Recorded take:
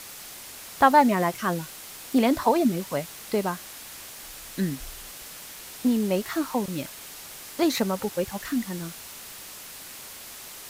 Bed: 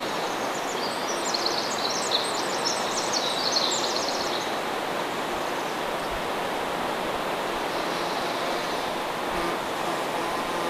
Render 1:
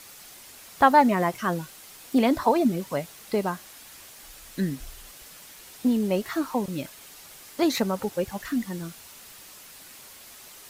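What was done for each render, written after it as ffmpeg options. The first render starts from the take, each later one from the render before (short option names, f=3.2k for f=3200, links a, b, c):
-af "afftdn=nr=6:nf=-42"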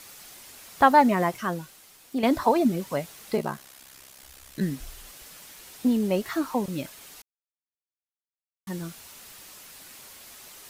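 -filter_complex "[0:a]asplit=3[a][b][c];[a]afade=t=out:st=3.36:d=0.02[d];[b]aeval=exprs='val(0)*sin(2*PI*33*n/s)':c=same,afade=t=in:st=3.36:d=0.02,afade=t=out:st=4.6:d=0.02[e];[c]afade=t=in:st=4.6:d=0.02[f];[d][e][f]amix=inputs=3:normalize=0,asplit=4[g][h][i][j];[g]atrim=end=2.23,asetpts=PTS-STARTPTS,afade=t=out:st=1.25:d=0.98:c=qua:silence=0.421697[k];[h]atrim=start=2.23:end=7.22,asetpts=PTS-STARTPTS,afade=t=in:d=0.004:c=hsin:silence=0.421697,afade=t=out:st=4.986:d=0.004:c=hsin[l];[i]atrim=start=7.22:end=8.67,asetpts=PTS-STARTPTS,volume=0[m];[j]atrim=start=8.67,asetpts=PTS-STARTPTS,afade=t=in:d=0.004:c=hsin[n];[k][l][m][n]concat=n=4:v=0:a=1"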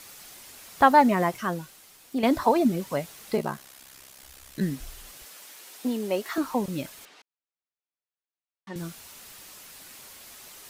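-filter_complex "[0:a]asettb=1/sr,asplit=3[a][b][c];[a]atrim=end=5.254[d];[b]atrim=start=5.25:end=6.38,asetpts=PTS-STARTPTS,afade=t=in:d=0.004:c=qsin,afade=t=out:st=1.126:d=0.004:c=qsin,highpass=320[e];[c]atrim=start=6.376[f];[d][e]acrossfade=d=0.004:c1=hsin:c2=qsin[g];[g][f]acrossfade=d=0.004:c1=qsin:c2=hsin,asettb=1/sr,asplit=3[h][i][j];[h]atrim=end=7.054[k];[i]atrim=start=7.05:end=8.76,asetpts=PTS-STARTPTS,afade=t=in:d=0.004:c=qsin,afade=t=out:st=1.706:d=0.004:c=qsin,highpass=280,lowpass=3.6k[l];[j]atrim=start=8.756[m];[k][l]acrossfade=d=0.004:c1=hsin:c2=qsin[n];[n][m]acrossfade=d=0.004:c1=qsin:c2=hsin"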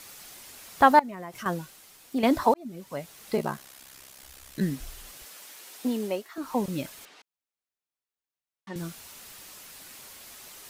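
-filter_complex "[0:a]asettb=1/sr,asplit=3[a][b][c];[a]atrim=end=0.994[d];[b]atrim=start=0.99:end=1.46,asetpts=PTS-STARTPTS,afade=t=in:d=0.004:c=qsin,afade=t=out:st=0.466:d=0.004:c=qsin,acompressor=threshold=-35dB:ratio=8:attack=3.2:release=140:knee=1:detection=peak[e];[c]atrim=start=1.456[f];[d][e]acrossfade=d=0.004:c1=hsin:c2=qsin[g];[g][f]acrossfade=d=0.004:c1=qsin:c2=hsin,asplit=4[h][i][j][k];[h]atrim=end=2.54,asetpts=PTS-STARTPTS,afade=t=out:st=2.536:d=0.004:c=hsin[l];[i]atrim=start=2.54:end=6.28,asetpts=PTS-STARTPTS,afade=t=in:d=0.9,afade=t=out:st=3.5:d=0.24:silence=0.223872[m];[j]atrim=start=6.28:end=6.35,asetpts=PTS-STARTPTS,volume=-13dB[n];[k]atrim=start=6.35,asetpts=PTS-STARTPTS,afade=t=in:d=0.24:silence=0.223872[o];[l][m][n][o]concat=n=4:v=0:a=1"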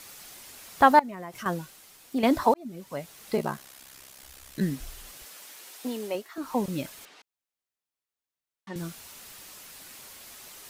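-filter_complex "[0:a]asettb=1/sr,asplit=3[a][b][c];[a]atrim=end=5.714[d];[b]atrim=start=5.71:end=6.15,asetpts=PTS-STARTPTS,afade=t=in:d=0.004:c=qsin,afade=t=out:st=0.436:d=0.004:c=qsin,equalizer=f=160:w=0.76:g=-8.5[e];[c]atrim=start=6.146[f];[d][e]acrossfade=d=0.004:c1=hsin:c2=qsin[g];[g][f]acrossfade=d=0.004:c1=qsin:c2=hsin"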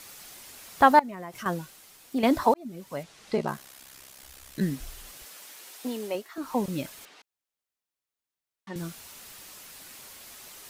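-filter_complex "[0:a]asettb=1/sr,asplit=3[a][b][c];[a]atrim=end=3.034[d];[b]atrim=start=3.03:end=3.48,asetpts=PTS-STARTPTS,afade=t=in:d=0.004:c=qsin,afade=t=out:st=0.446:d=0.004:c=qsin,lowpass=6.6k[e];[c]atrim=start=3.476[f];[d][e]acrossfade=d=0.004:c1=hsin:c2=qsin[g];[g][f]acrossfade=d=0.004:c1=qsin:c2=hsin"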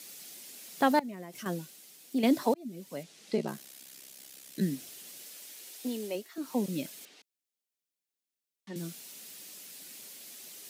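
-af "highpass=f=170:w=0.5412,highpass=f=170:w=1.3066,equalizer=f=1.1k:t=o:w=1.6:g=-12.5"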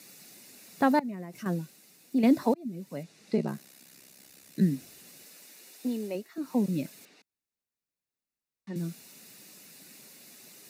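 -af "bass=f=250:g=8,treble=f=4k:g=-5,bandreject=f=3.2k:w=5.3"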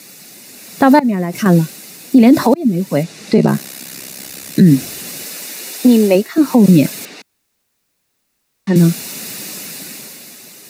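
-af "dynaudnorm=f=110:g=17:m=11dB,alimiter=level_in=13dB:limit=-1dB:release=50:level=0:latency=1"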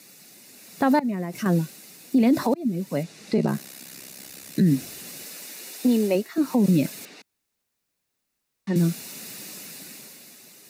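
-af "volume=-11dB"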